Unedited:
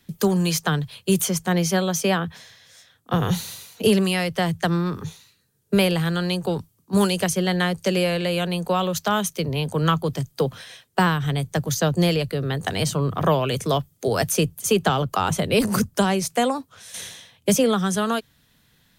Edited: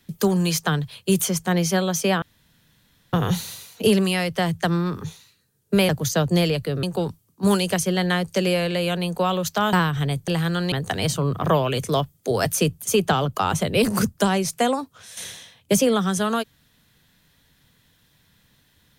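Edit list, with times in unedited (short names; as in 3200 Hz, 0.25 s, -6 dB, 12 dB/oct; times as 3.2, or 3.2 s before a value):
2.22–3.13 room tone
5.89–6.33 swap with 11.55–12.49
9.23–11 cut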